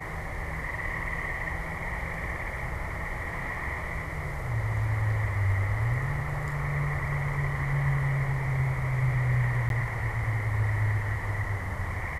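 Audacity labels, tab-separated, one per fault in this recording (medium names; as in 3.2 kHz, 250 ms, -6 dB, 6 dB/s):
9.690000	9.700000	dropout 12 ms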